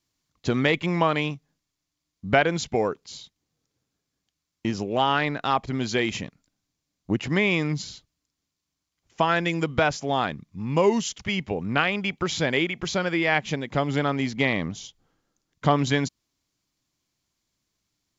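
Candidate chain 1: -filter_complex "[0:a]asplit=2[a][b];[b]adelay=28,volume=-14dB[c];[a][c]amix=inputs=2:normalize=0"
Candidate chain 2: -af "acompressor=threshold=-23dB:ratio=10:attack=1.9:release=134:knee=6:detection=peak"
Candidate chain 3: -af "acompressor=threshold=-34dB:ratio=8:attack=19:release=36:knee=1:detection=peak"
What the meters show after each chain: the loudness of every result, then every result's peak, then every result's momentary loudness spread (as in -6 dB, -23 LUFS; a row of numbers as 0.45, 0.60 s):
-25.0, -31.5, -33.5 LUFS; -3.5, -13.0, -13.5 dBFS; 11, 8, 8 LU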